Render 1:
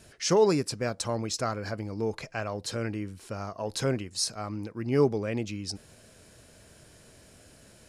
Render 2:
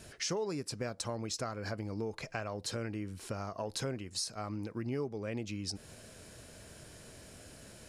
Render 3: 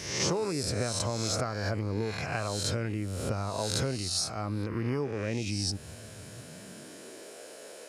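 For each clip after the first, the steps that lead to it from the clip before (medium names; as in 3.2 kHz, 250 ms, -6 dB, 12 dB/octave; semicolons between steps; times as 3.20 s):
compression 5:1, threshold -37 dBFS, peak gain reduction 17.5 dB; trim +2 dB
reverse spectral sustain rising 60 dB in 0.88 s; high-pass sweep 80 Hz -> 460 Hz, 6.02–7.37 s; trim +3 dB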